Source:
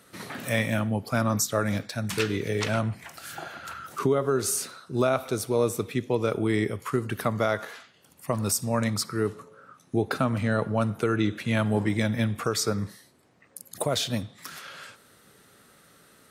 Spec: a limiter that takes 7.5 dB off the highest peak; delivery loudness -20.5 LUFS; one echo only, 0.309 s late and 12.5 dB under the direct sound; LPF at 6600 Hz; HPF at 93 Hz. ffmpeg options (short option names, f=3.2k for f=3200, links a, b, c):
-af "highpass=93,lowpass=6.6k,alimiter=limit=-20dB:level=0:latency=1,aecho=1:1:309:0.237,volume=10.5dB"